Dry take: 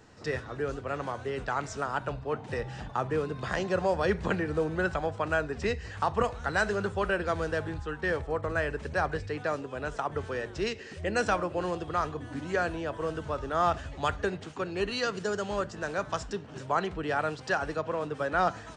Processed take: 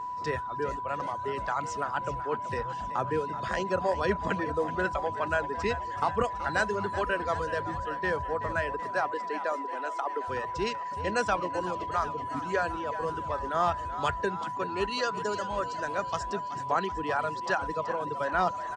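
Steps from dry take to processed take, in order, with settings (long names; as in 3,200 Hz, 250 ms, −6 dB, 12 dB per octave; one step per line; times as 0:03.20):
0:08.80–0:10.28: elliptic high-pass filter 240 Hz, stop band 40 dB
reverb reduction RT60 1.9 s
echo with shifted repeats 378 ms, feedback 64%, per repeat +62 Hz, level −13 dB
steady tone 990 Hz −33 dBFS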